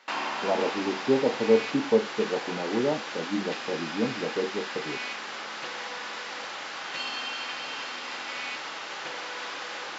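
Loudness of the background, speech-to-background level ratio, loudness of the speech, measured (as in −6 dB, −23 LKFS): −34.0 LKFS, 5.5 dB, −28.5 LKFS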